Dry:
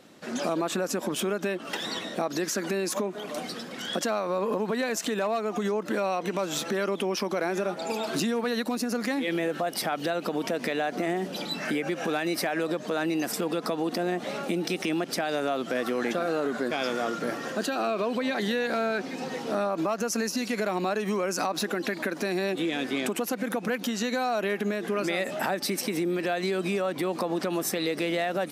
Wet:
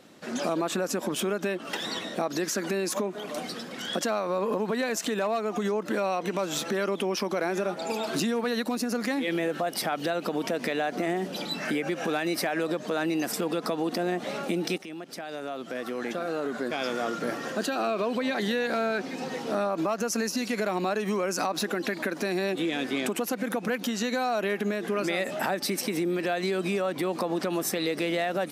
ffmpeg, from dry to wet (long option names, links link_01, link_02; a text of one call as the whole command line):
ffmpeg -i in.wav -filter_complex "[0:a]asplit=2[link_01][link_02];[link_01]atrim=end=14.78,asetpts=PTS-STARTPTS,afade=type=out:start_time=14.776:duration=0.004:curve=hsin:silence=0.211349[link_03];[link_02]atrim=start=14.78,asetpts=PTS-STARTPTS,afade=type=in:duration=2.51:silence=0.211349[link_04];[link_03][link_04]concat=n=2:v=0:a=1" out.wav